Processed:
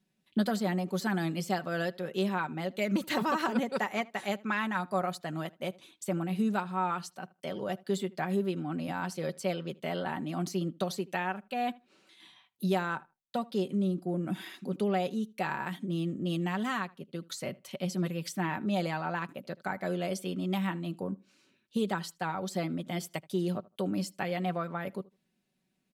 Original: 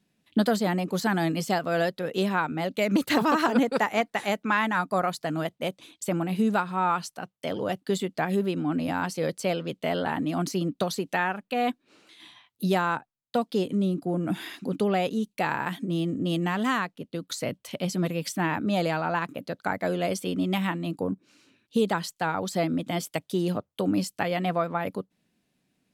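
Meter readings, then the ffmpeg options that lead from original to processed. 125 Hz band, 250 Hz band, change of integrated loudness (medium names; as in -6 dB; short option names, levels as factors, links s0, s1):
-4.0 dB, -5.0 dB, -5.5 dB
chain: -filter_complex "[0:a]aecho=1:1:5.3:0.47,asplit=2[s0][s1];[s1]adelay=78,lowpass=f=2800:p=1,volume=0.075,asplit=2[s2][s3];[s3]adelay=78,lowpass=f=2800:p=1,volume=0.17[s4];[s2][s4]amix=inputs=2:normalize=0[s5];[s0][s5]amix=inputs=2:normalize=0,volume=0.447"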